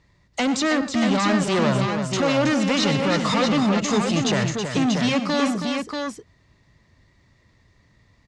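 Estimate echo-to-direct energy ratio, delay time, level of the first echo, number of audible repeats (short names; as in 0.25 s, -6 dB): -2.5 dB, 96 ms, -16.0 dB, 3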